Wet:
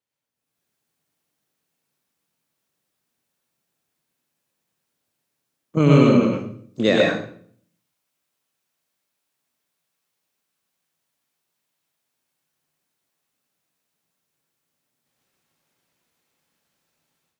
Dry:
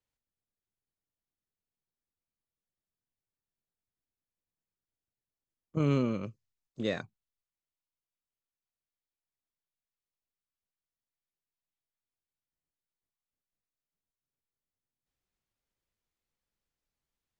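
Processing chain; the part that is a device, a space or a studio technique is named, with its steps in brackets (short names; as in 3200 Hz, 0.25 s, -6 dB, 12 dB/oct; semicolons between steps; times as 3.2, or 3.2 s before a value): far laptop microphone (reverb RT60 0.55 s, pre-delay 88 ms, DRR -2 dB; HPF 140 Hz 12 dB/oct; AGC gain up to 13 dB); gain +1 dB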